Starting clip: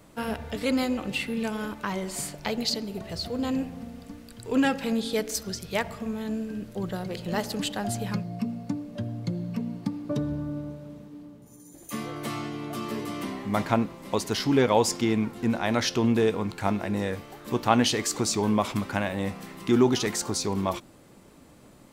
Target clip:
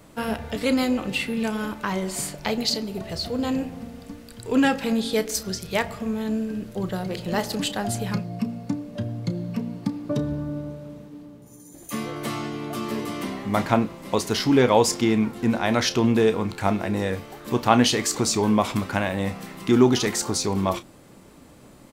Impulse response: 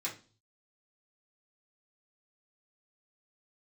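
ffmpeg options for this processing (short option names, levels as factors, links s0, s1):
-filter_complex "[0:a]asplit=2[s0][s1];[s1]adelay=32,volume=0.224[s2];[s0][s2]amix=inputs=2:normalize=0,volume=1.5"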